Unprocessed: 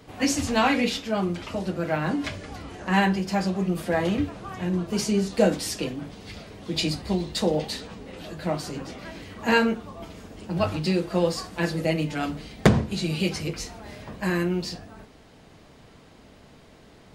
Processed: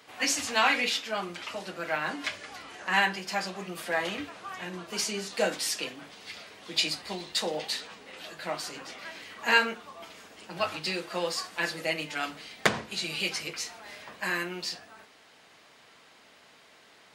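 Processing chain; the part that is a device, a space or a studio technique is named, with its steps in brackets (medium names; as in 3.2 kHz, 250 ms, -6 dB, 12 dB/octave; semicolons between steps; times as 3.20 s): filter by subtraction (in parallel: low-pass 1.8 kHz 12 dB/octave + polarity flip)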